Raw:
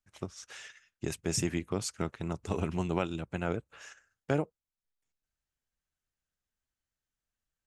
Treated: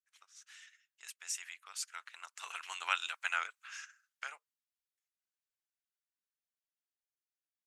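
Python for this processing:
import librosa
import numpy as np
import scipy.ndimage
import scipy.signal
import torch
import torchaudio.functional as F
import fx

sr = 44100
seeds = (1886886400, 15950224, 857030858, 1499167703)

y = fx.doppler_pass(x, sr, speed_mps=11, closest_m=3.6, pass_at_s=3.15)
y = scipy.signal.sosfilt(scipy.signal.butter(4, 1300.0, 'highpass', fs=sr, output='sos'), y)
y = y * 10.0 ** (10.0 / 20.0)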